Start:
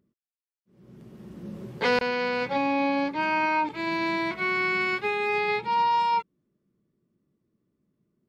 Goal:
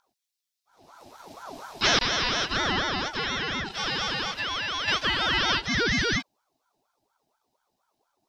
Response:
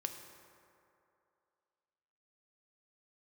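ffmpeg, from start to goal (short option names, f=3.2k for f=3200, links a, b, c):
-filter_complex "[0:a]acrossover=split=4500[a][b];[b]acompressor=threshold=-56dB:ratio=4:attack=1:release=60[c];[a][c]amix=inputs=2:normalize=0,equalizer=f=2.1k:t=o:w=0.86:g=13,asettb=1/sr,asplit=3[d][e][f];[d]atrim=end=2.794[g];[e]atrim=start=2.79:end=4.88,asetpts=PTS-STARTPTS,afade=t=in:d=0.004:c=qsin,afade=t=out:st=2.086:d=0.004:c=qsin,acompressor=threshold=-21dB:ratio=6[h];[f]atrim=start=4.876[i];[g][h]acrossfade=d=0.004:c1=hsin:c2=qsin[j];[j][i]acrossfade=d=0.004:c1=qsin:c2=hsin,highshelf=f=2.9k:t=q:w=3:g=12.5,bandreject=f=3.9k:w=6.4,aeval=exprs='val(0)*sin(2*PI*830*n/s+830*0.45/4.2*sin(2*PI*4.2*n/s))':c=same"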